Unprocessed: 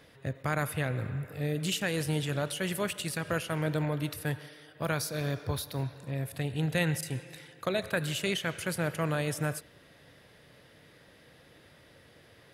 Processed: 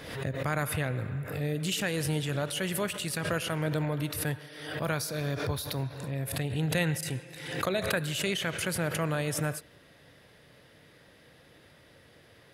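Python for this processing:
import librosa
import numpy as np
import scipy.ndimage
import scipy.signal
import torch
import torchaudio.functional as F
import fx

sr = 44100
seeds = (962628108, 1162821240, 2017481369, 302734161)

y = fx.pre_swell(x, sr, db_per_s=57.0)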